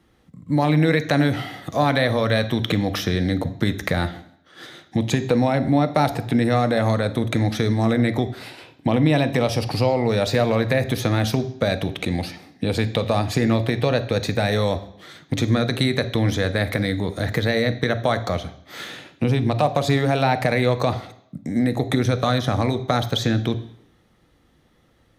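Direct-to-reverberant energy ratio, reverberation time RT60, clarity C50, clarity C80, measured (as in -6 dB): 10.5 dB, 0.70 s, 14.5 dB, 17.5 dB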